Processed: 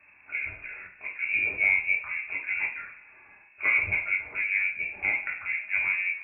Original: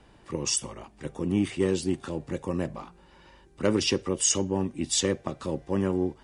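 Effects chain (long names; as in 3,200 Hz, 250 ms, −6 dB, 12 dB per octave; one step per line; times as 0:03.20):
voice inversion scrambler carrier 2,600 Hz
coupled-rooms reverb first 0.41 s, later 1.9 s, from −19 dB, DRR −3 dB
level −5 dB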